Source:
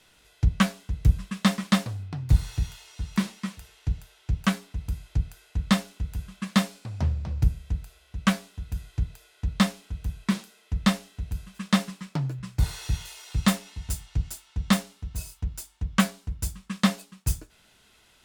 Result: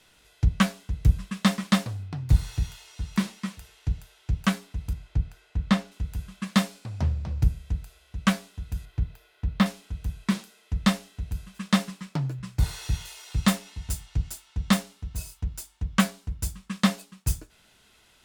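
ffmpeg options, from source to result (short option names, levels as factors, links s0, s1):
-filter_complex "[0:a]asettb=1/sr,asplit=3[s0][s1][s2];[s0]atrim=end=4.934[s3];[s1]atrim=start=4.93:end=5.92,asetpts=PTS-STARTPTS,afade=t=in:d=0.004:c=qsin,afade=t=out:st=0.986:d=0.004:c=qsin,lowpass=f=3000:p=1[s4];[s2]atrim=start=5.916[s5];[s3][s4]acrossfade=d=0.004:c1=hsin:c2=qsin[s6];[s6][s5]acrossfade=d=0.004:c1=qsin:c2=hsin,asettb=1/sr,asplit=3[s7][s8][s9];[s7]atrim=end=8.854[s10];[s8]atrim=start=8.85:end=9.66,asetpts=PTS-STARTPTS,afade=t=in:d=0.004:c=qsin,afade=t=out:st=0.806:d=0.004:c=qsin,equalizer=f=7900:t=o:w=1.5:g=-11[s11];[s9]atrim=start=9.656[s12];[s10][s11]acrossfade=d=0.004:c1=hsin:c2=qsin[s13];[s13][s12]acrossfade=d=0.004:c1=qsin:c2=hsin"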